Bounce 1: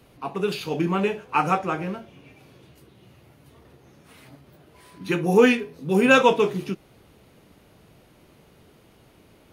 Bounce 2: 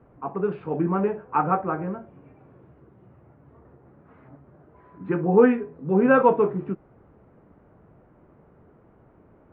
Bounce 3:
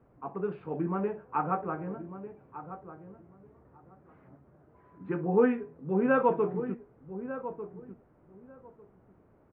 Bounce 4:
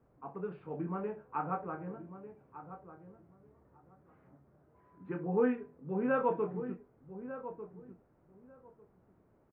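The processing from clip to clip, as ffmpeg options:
ffmpeg -i in.wav -af "lowpass=frequency=1500:width=0.5412,lowpass=frequency=1500:width=1.3066" out.wav
ffmpeg -i in.wav -filter_complex "[0:a]asplit=2[link_01][link_02];[link_02]adelay=1197,lowpass=frequency=1300:poles=1,volume=-11.5dB,asplit=2[link_03][link_04];[link_04]adelay=1197,lowpass=frequency=1300:poles=1,volume=0.18[link_05];[link_01][link_03][link_05]amix=inputs=3:normalize=0,volume=-7.5dB" out.wav
ffmpeg -i in.wav -filter_complex "[0:a]asplit=2[link_01][link_02];[link_02]adelay=28,volume=-9dB[link_03];[link_01][link_03]amix=inputs=2:normalize=0,volume=-6.5dB" out.wav

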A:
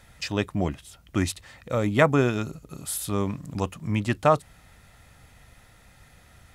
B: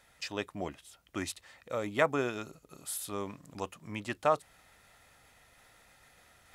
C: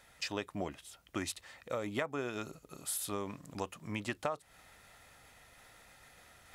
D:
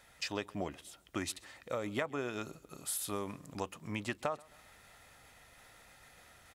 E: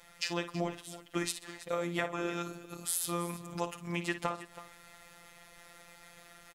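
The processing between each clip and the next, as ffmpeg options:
ffmpeg -i in.wav -af "areverse,acompressor=mode=upward:threshold=-44dB:ratio=2.5,areverse,bass=frequency=250:gain=-12,treble=frequency=4000:gain=0,volume=-7dB" out.wav
ffmpeg -i in.wav -af "acompressor=threshold=-34dB:ratio=10,volume=2dB" out.wav
ffmpeg -i in.wav -af "aecho=1:1:133|266|399:0.0631|0.0284|0.0128" out.wav
ffmpeg -i in.wav -af "aecho=1:1:55|325:0.266|0.168,afftfilt=real='hypot(re,im)*cos(PI*b)':imag='0':win_size=1024:overlap=0.75,volume=7dB" out.wav

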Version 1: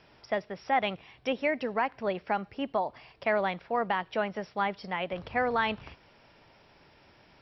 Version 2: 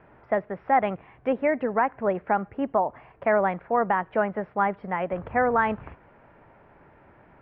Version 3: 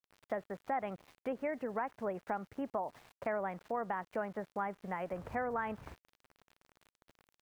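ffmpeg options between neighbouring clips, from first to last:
ffmpeg -i in.wav -af "lowpass=frequency=1800:width=0.5412,lowpass=frequency=1800:width=1.3066,volume=6dB" out.wav
ffmpeg -i in.wav -af "aeval=exprs='val(0)*gte(abs(val(0)),0.00501)':channel_layout=same,acompressor=threshold=-34dB:ratio=2,volume=-5.5dB" out.wav

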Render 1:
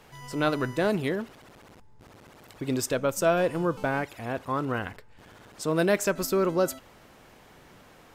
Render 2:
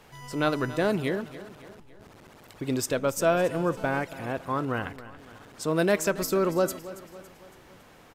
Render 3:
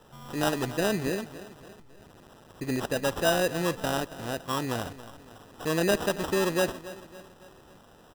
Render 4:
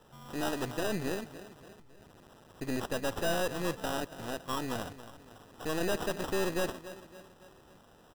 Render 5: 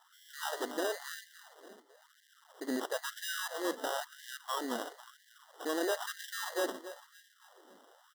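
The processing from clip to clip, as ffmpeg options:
ffmpeg -i in.wav -af "aecho=1:1:279|558|837|1116:0.158|0.0792|0.0396|0.0198" out.wav
ffmpeg -i in.wav -af "acrusher=samples=20:mix=1:aa=0.000001,volume=-1.5dB" out.wav
ffmpeg -i in.wav -af "aeval=exprs='(tanh(22.4*val(0)+0.75)-tanh(0.75))/22.4':channel_layout=same" out.wav
ffmpeg -i in.wav -af "asuperstop=centerf=2500:order=8:qfactor=3.9,afftfilt=real='re*gte(b*sr/1024,210*pow(1600/210,0.5+0.5*sin(2*PI*1*pts/sr)))':imag='im*gte(b*sr/1024,210*pow(1600/210,0.5+0.5*sin(2*PI*1*pts/sr)))':win_size=1024:overlap=0.75" out.wav

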